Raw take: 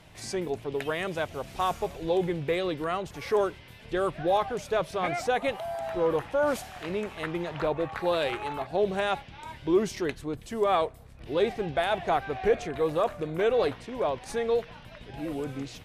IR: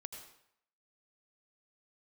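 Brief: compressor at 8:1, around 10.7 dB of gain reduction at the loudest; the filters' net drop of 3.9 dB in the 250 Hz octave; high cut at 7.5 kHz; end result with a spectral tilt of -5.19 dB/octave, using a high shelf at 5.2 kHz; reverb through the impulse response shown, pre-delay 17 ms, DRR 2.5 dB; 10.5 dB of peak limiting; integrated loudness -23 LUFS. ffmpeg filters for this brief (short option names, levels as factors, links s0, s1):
-filter_complex "[0:a]lowpass=7500,equalizer=f=250:t=o:g=-6.5,highshelf=f=5200:g=-4.5,acompressor=threshold=0.0251:ratio=8,alimiter=level_in=2.51:limit=0.0631:level=0:latency=1,volume=0.398,asplit=2[s0][s1];[1:a]atrim=start_sample=2205,adelay=17[s2];[s1][s2]afir=irnorm=-1:irlink=0,volume=1.12[s3];[s0][s3]amix=inputs=2:normalize=0,volume=6.68"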